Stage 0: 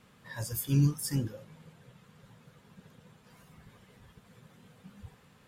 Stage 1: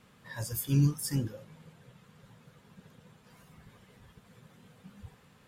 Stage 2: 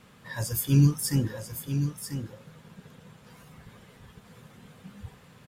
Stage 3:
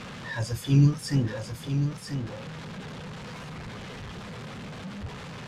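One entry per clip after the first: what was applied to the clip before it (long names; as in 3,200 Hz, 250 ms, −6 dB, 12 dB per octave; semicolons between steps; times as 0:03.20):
no processing that can be heard
single-tap delay 991 ms −8.5 dB; level +5.5 dB
converter with a step at zero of −35 dBFS; low-pass filter 5,000 Hz 12 dB per octave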